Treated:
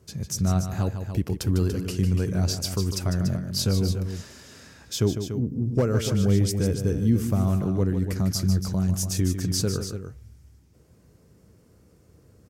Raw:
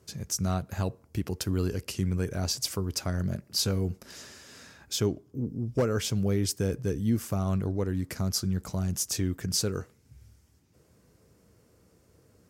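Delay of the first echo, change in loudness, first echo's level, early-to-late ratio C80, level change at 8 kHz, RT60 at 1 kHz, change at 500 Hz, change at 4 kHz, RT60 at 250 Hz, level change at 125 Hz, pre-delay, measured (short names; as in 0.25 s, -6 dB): 0.151 s, +5.0 dB, -9.0 dB, none, +1.0 dB, none, +3.0 dB, +1.0 dB, none, +7.0 dB, none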